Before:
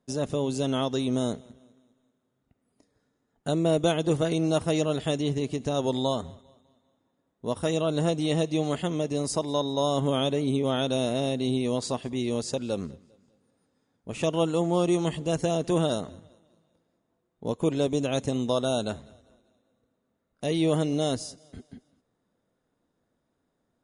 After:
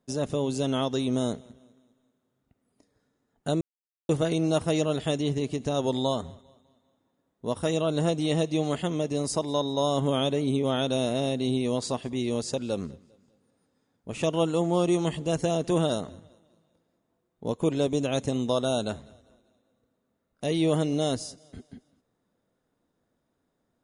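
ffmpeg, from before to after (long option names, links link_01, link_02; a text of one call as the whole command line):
ffmpeg -i in.wav -filter_complex "[0:a]asplit=3[link_01][link_02][link_03];[link_01]atrim=end=3.61,asetpts=PTS-STARTPTS,afade=type=out:start_time=3.606:duration=0.004:curve=hsin[link_04];[link_02]atrim=start=3.61:end=4.09,asetpts=PTS-STARTPTS,volume=0[link_05];[link_03]atrim=start=4.09,asetpts=PTS-STARTPTS,afade=type=in:duration=0.004:curve=hsin[link_06];[link_04][link_05][link_06]concat=n=3:v=0:a=1" out.wav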